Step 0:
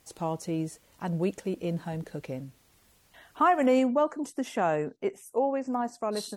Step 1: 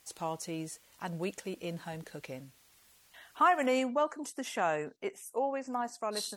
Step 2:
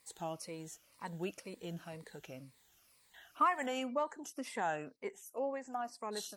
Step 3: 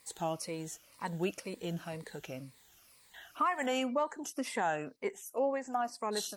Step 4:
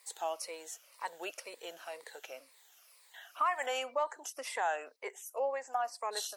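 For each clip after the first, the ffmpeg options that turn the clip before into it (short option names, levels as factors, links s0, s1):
-af "tiltshelf=f=740:g=-6,volume=0.631"
-af "afftfilt=real='re*pow(10,10/40*sin(2*PI*(0.96*log(max(b,1)*sr/1024/100)/log(2)-(-2)*(pts-256)/sr)))':imag='im*pow(10,10/40*sin(2*PI*(0.96*log(max(b,1)*sr/1024/100)/log(2)-(-2)*(pts-256)/sr)))':win_size=1024:overlap=0.75,volume=0.473"
-af "alimiter=level_in=1.5:limit=0.0631:level=0:latency=1:release=269,volume=0.668,volume=2"
-af "highpass=f=510:w=0.5412,highpass=f=510:w=1.3066"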